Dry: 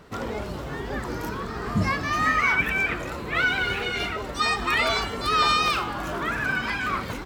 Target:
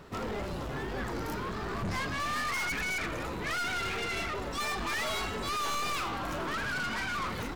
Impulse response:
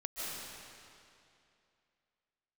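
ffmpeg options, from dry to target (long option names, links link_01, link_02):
-af "asetrate=42336,aresample=44100,aeval=exprs='(tanh(35.5*val(0)+0.3)-tanh(0.3))/35.5':channel_layout=same"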